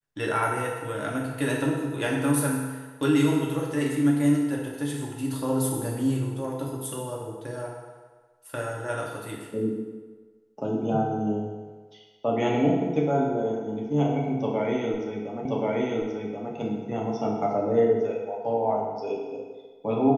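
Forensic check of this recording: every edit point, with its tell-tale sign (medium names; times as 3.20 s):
15.45 s: repeat of the last 1.08 s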